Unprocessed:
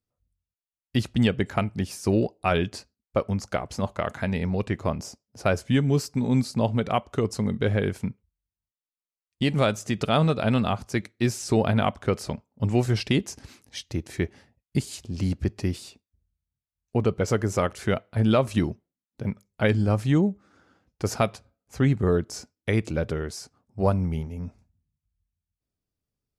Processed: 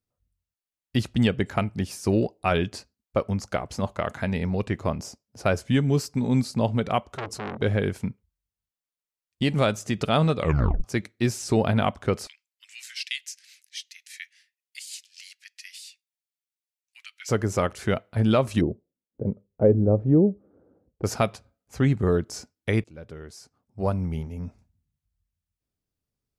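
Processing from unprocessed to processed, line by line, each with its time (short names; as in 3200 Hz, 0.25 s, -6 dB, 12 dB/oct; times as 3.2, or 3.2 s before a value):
7.09–7.62 core saturation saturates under 2500 Hz
10.36 tape stop 0.48 s
12.27–17.29 steep high-pass 1900 Hz
18.61–21.04 synth low-pass 490 Hz, resonance Q 2.4
22.84–24.38 fade in, from -23 dB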